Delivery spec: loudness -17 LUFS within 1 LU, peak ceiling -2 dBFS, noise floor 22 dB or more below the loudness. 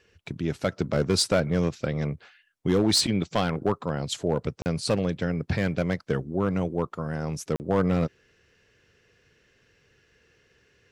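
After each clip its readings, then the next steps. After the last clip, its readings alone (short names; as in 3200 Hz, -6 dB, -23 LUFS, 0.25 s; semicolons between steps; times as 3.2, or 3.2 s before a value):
clipped 0.6%; flat tops at -15.0 dBFS; dropouts 2; longest dropout 39 ms; loudness -27.0 LUFS; peak -15.0 dBFS; loudness target -17.0 LUFS
-> clip repair -15 dBFS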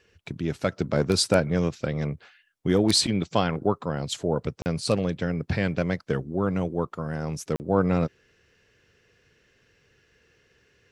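clipped 0.0%; dropouts 2; longest dropout 39 ms
-> interpolate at 4.62/7.56, 39 ms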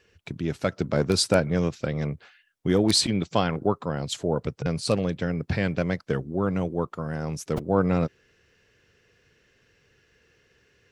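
dropouts 0; loudness -26.0 LUFS; peak -6.0 dBFS; loudness target -17.0 LUFS
-> gain +9 dB; limiter -2 dBFS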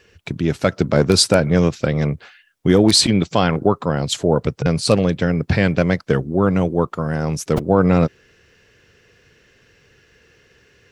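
loudness -17.5 LUFS; peak -2.0 dBFS; noise floor -56 dBFS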